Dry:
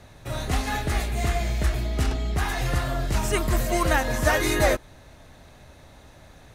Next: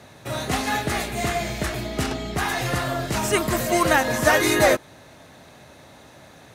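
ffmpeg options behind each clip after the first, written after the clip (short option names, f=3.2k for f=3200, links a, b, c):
-af "highpass=140,volume=4.5dB"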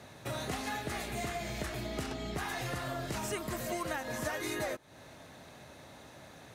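-af "acompressor=threshold=-29dB:ratio=6,volume=-5dB"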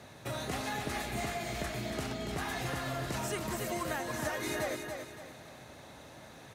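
-af "aecho=1:1:283|566|849|1132|1415:0.501|0.19|0.0724|0.0275|0.0105"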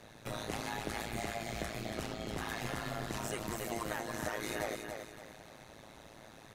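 -af "tremolo=f=110:d=0.947,volume=1dB"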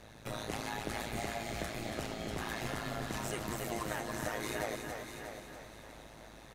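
-af "aeval=exprs='val(0)+0.000891*(sin(2*PI*50*n/s)+sin(2*PI*2*50*n/s)/2+sin(2*PI*3*50*n/s)/3+sin(2*PI*4*50*n/s)/4+sin(2*PI*5*50*n/s)/5)':c=same,aecho=1:1:642|1284|1926:0.355|0.0993|0.0278"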